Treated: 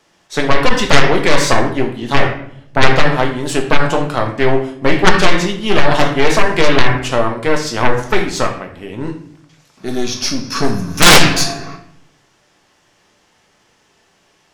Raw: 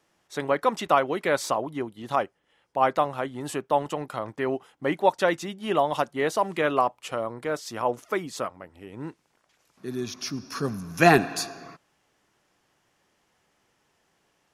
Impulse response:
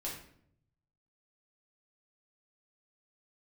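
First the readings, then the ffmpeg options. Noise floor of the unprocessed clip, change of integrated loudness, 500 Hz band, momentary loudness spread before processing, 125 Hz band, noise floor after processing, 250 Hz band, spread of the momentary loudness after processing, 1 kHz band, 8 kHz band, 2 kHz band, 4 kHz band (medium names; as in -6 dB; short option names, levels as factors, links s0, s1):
-71 dBFS, +12.0 dB, +9.5 dB, 12 LU, +15.5 dB, -57 dBFS, +12.5 dB, 13 LU, +8.5 dB, +17.5 dB, +14.5 dB, +20.0 dB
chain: -filter_complex "[0:a]aeval=exprs='0.708*(cos(1*acos(clip(val(0)/0.708,-1,1)))-cos(1*PI/2))+0.316*(cos(3*acos(clip(val(0)/0.708,-1,1)))-cos(3*PI/2))+0.158*(cos(4*acos(clip(val(0)/0.708,-1,1)))-cos(4*PI/2))':c=same,asplit=2[s0][s1];[1:a]atrim=start_sample=2205,lowpass=6800,highshelf=f=3100:g=11[s2];[s1][s2]afir=irnorm=-1:irlink=0,volume=0.891[s3];[s0][s3]amix=inputs=2:normalize=0,aeval=exprs='1.58*sin(PI/2*7.94*val(0)/1.58)':c=same,volume=0.562"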